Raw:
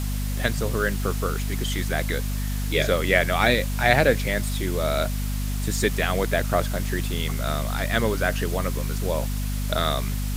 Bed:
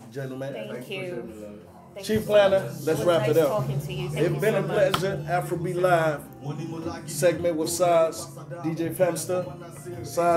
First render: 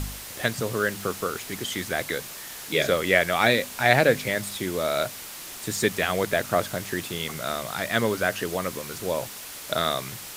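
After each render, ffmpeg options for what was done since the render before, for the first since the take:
-af "bandreject=f=50:t=h:w=4,bandreject=f=100:t=h:w=4,bandreject=f=150:t=h:w=4,bandreject=f=200:t=h:w=4,bandreject=f=250:t=h:w=4"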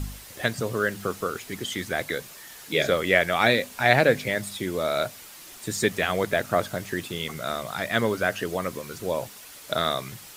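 -af "afftdn=nr=7:nf=-39"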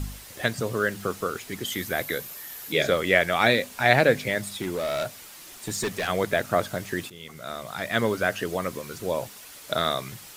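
-filter_complex "[0:a]asettb=1/sr,asplit=3[s0][s1][s2];[s0]atrim=end=1.654[s3];[s1]atrim=start=1.65:end=2.72,asetpts=PTS-STARTPTS,afade=t=in:d=0.004:c=qsin,afade=t=out:st=1.066:d=0.004:c=qsin,equalizer=f=13000:t=o:w=0.37:g=12[s4];[s2]atrim=start=2.716[s5];[s3][s4]acrossfade=d=0.004:c1=hsin:c2=qsin[s6];[s6][s5]acrossfade=d=0.004:c1=qsin:c2=hsin,asettb=1/sr,asplit=3[s7][s8][s9];[s7]atrim=end=4.544[s10];[s8]atrim=start=4.54:end=6.08,asetpts=PTS-STARTPTS,afade=t=in:d=0.004:c=qsin,afade=t=out:st=1.536:d=0.004:c=qsin,volume=15,asoftclip=hard,volume=0.0668[s11];[s9]atrim=start=6.076[s12];[s10][s11]acrossfade=d=0.004:c1=hsin:c2=qsin[s13];[s13][s12]acrossfade=d=0.004:c1=qsin:c2=hsin,asplit=2[s14][s15];[s14]atrim=end=7.1,asetpts=PTS-STARTPTS,afade=t=out:st=7.096:d=0.004:c=hsin:silence=0.177828[s16];[s15]atrim=start=7.1,asetpts=PTS-STARTPTS,afade=t=in:d=0.95:silence=0.177828[s17];[s16][s17]concat=n=2:v=0:a=1"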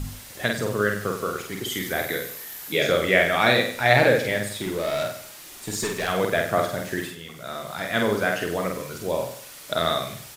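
-filter_complex "[0:a]asplit=2[s0][s1];[s1]adelay=48,volume=0.668[s2];[s0][s2]amix=inputs=2:normalize=0,aecho=1:1:97|194|291:0.282|0.0902|0.0289"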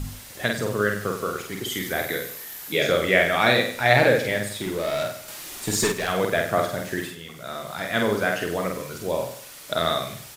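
-filter_complex "[0:a]asettb=1/sr,asplit=3[s0][s1][s2];[s0]atrim=end=5.284[s3];[s1]atrim=start=5.28:end=5.92,asetpts=PTS-STARTPTS,afade=t=in:d=0.004:c=qsin,afade=t=out:st=0.636:d=0.004:c=qsin,acontrast=32[s4];[s2]atrim=start=5.916[s5];[s3][s4]acrossfade=d=0.004:c1=hsin:c2=qsin[s6];[s6][s5]acrossfade=d=0.004:c1=qsin:c2=hsin"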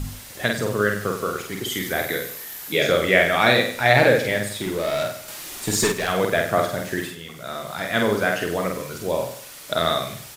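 -af "volume=1.26,alimiter=limit=0.891:level=0:latency=1"

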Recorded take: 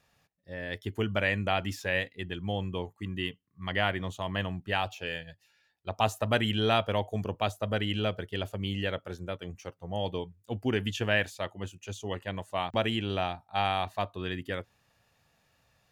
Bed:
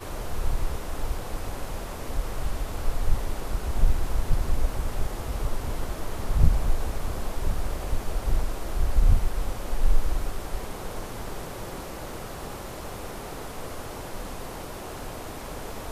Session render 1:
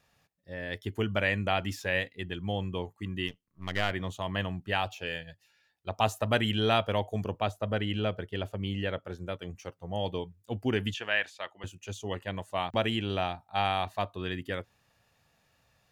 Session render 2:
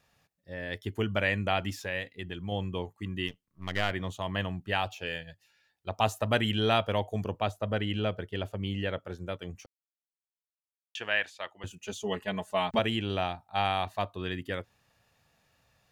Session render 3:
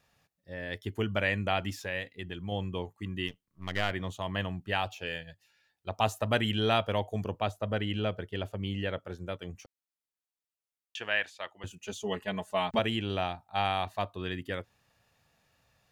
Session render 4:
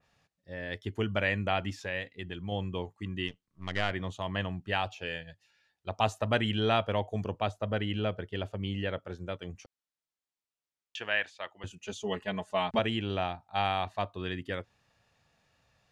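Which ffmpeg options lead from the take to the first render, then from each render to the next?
-filter_complex "[0:a]asplit=3[s0][s1][s2];[s0]afade=t=out:st=3.27:d=0.02[s3];[s1]aeval=exprs='if(lt(val(0),0),0.251*val(0),val(0))':c=same,afade=t=in:st=3.27:d=0.02,afade=t=out:st=3.9:d=0.02[s4];[s2]afade=t=in:st=3.9:d=0.02[s5];[s3][s4][s5]amix=inputs=3:normalize=0,asettb=1/sr,asplit=3[s6][s7][s8];[s6]atrim=end=7.384[s9];[s7]atrim=start=7.38:end=9.2,asetpts=PTS-STARTPTS,afade=t=in:d=0.004:c=qsin,afade=t=out:st=1.816:d=0.004:c=qsin,highshelf=f=3500:g=-7.5[s10];[s8]atrim=start=9.196[s11];[s9][s10]acrossfade=d=0.004:c1=hsin:c2=qsin[s12];[s12][s11]acrossfade=d=0.004:c1=qsin:c2=hsin,asettb=1/sr,asplit=3[s13][s14][s15];[s13]atrim=end=10.944[s16];[s14]atrim=start=10.94:end=11.64,asetpts=PTS-STARTPTS,afade=t=in:d=0.004:c=qsin,afade=t=out:st=0.696:d=0.004:c=qsin,bandpass=f=2000:t=q:w=0.58[s17];[s15]atrim=start=11.636[s18];[s16][s17]acrossfade=d=0.004:c1=hsin:c2=qsin[s19];[s19][s18]acrossfade=d=0.004:c1=qsin:c2=hsin"
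-filter_complex "[0:a]asettb=1/sr,asplit=3[s0][s1][s2];[s0]atrim=end=1.704[s3];[s1]atrim=start=1.7:end=2.52,asetpts=PTS-STARTPTS,afade=t=in:d=0.004:c=qsin,afade=t=out:st=0.816:d=0.004:c=qsin,acompressor=threshold=0.0158:ratio=1.5:attack=3.2:release=140:knee=1:detection=peak[s4];[s2]atrim=start=2.516[s5];[s3][s4]acrossfade=d=0.004:c1=hsin:c2=qsin[s6];[s6][s5]acrossfade=d=0.004:c1=qsin:c2=hsin,asettb=1/sr,asplit=3[s7][s8][s9];[s7]atrim=end=11.704[s10];[s8]atrim=start=11.7:end=12.79,asetpts=PTS-STARTPTS,afade=t=in:d=0.004:c=qsin,afade=t=out:st=1.086:d=0.004:c=qsin,aecho=1:1:4.7:0.96,atrim=end_sample=48069[s11];[s9]atrim=start=12.786[s12];[s10][s11]acrossfade=d=0.004:c1=hsin:c2=qsin[s13];[s13][s12]acrossfade=d=0.004:c1=qsin:c2=hsin,asplit=3[s14][s15][s16];[s14]atrim=end=9.66,asetpts=PTS-STARTPTS,afade=t=out:st=9.656:d=0.004:c=hsin[s17];[s15]atrim=start=9.66:end=10.95,asetpts=PTS-STARTPTS,volume=0[s18];[s16]atrim=start=10.95,asetpts=PTS-STARTPTS,afade=t=in:d=0.004:c=hsin[s19];[s17][s18][s19]concat=n=3:v=0:a=1"
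-af "volume=0.891"
-af "lowpass=7600,adynamicequalizer=threshold=0.00708:dfrequency=3000:dqfactor=0.7:tfrequency=3000:tqfactor=0.7:attack=5:release=100:ratio=0.375:range=2:mode=cutabove:tftype=highshelf"

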